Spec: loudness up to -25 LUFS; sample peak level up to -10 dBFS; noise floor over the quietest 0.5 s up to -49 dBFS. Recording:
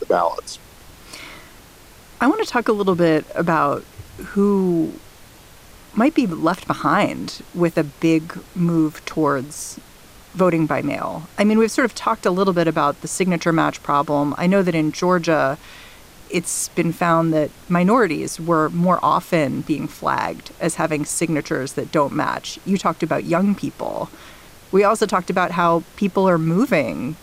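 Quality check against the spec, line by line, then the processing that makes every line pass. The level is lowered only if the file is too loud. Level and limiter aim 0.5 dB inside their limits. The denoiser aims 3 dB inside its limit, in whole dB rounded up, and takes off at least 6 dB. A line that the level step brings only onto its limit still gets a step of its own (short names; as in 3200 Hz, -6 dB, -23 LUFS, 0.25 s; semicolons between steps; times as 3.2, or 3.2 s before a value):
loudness -19.5 LUFS: fail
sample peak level -5.5 dBFS: fail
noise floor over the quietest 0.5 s -45 dBFS: fail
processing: gain -6 dB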